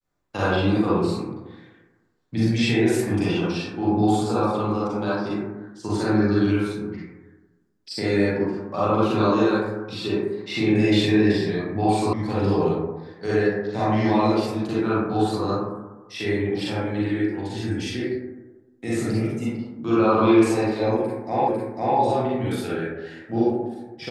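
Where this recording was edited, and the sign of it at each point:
12.13 s: sound stops dead
21.48 s: repeat of the last 0.5 s

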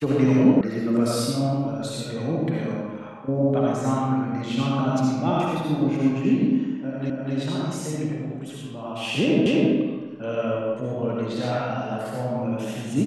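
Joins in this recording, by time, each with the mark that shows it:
0.61 s: sound stops dead
7.10 s: repeat of the last 0.25 s
9.46 s: repeat of the last 0.26 s

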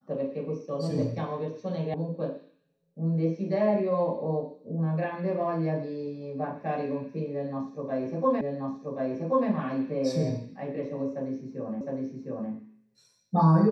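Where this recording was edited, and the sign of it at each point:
1.94 s: sound stops dead
8.41 s: repeat of the last 1.08 s
11.81 s: repeat of the last 0.71 s

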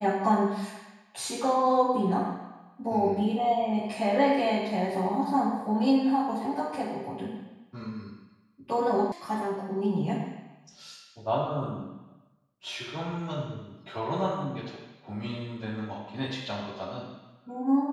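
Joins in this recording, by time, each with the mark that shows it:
9.12 s: sound stops dead

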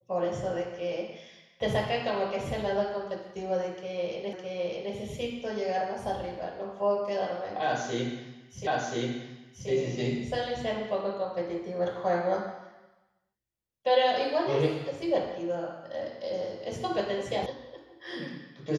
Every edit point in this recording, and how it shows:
4.33 s: repeat of the last 0.61 s
8.67 s: repeat of the last 1.03 s
17.46 s: sound stops dead

